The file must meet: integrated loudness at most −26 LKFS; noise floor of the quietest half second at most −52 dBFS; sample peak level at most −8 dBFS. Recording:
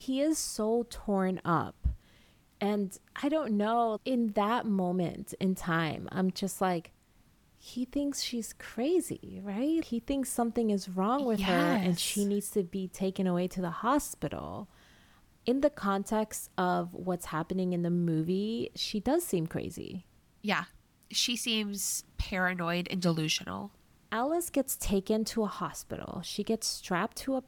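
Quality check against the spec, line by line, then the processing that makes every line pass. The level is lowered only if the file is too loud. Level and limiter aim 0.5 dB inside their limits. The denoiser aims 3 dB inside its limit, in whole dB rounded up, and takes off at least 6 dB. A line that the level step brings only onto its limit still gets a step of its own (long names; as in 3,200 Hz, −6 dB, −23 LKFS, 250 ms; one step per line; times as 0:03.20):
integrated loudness −31.5 LKFS: in spec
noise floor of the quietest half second −64 dBFS: in spec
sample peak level −13.0 dBFS: in spec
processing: no processing needed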